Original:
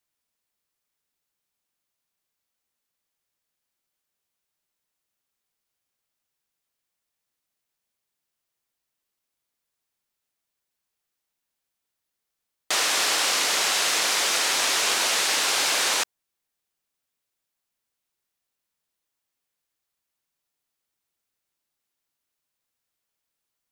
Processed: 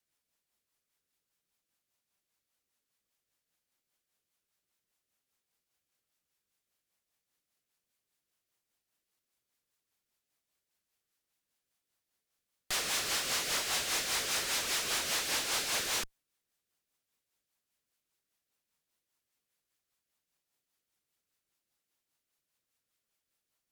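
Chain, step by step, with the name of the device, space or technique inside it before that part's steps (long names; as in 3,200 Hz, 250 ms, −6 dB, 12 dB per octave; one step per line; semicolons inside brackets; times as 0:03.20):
overdriven rotary cabinet (tube saturation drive 35 dB, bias 0.7; rotating-speaker cabinet horn 5 Hz)
level +5.5 dB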